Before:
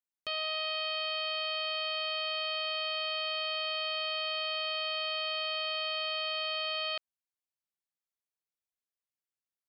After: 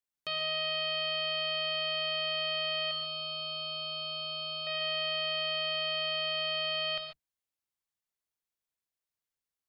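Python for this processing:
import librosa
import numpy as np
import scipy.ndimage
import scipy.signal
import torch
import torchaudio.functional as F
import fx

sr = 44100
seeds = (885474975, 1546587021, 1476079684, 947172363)

y = fx.octave_divider(x, sr, octaves=2, level_db=-2.0)
y = fx.fixed_phaser(y, sr, hz=370.0, stages=8, at=(2.91, 4.67))
y = fx.rev_gated(y, sr, seeds[0], gate_ms=160, shape='rising', drr_db=5.0)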